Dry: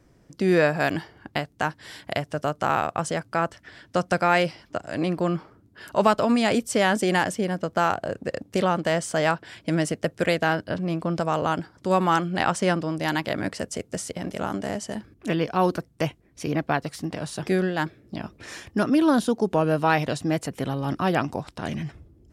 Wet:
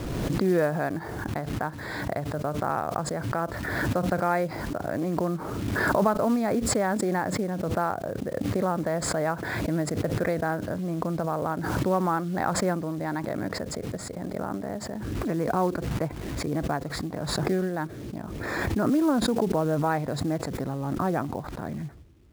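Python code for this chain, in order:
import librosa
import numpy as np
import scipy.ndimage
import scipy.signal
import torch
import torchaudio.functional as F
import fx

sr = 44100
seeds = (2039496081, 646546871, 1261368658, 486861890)

y = np.convolve(x, np.full(15, 1.0 / 15))[:len(x)]
y = fx.quant_companded(y, sr, bits=6)
y = fx.pre_swell(y, sr, db_per_s=25.0)
y = y * librosa.db_to_amplitude(-3.5)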